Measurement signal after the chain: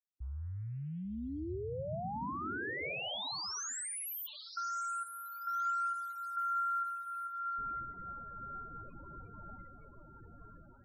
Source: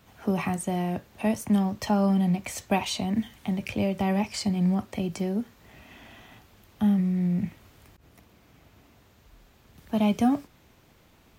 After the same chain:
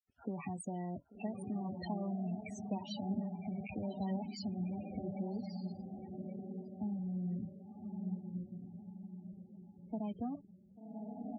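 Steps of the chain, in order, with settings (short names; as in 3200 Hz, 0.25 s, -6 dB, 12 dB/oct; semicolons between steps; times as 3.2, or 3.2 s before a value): compressor 6:1, threshold -28 dBFS; sample gate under -47 dBFS; on a send: diffused feedback echo 1.138 s, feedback 42%, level -3 dB; on the sum: loudest bins only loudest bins 16; gain -8.5 dB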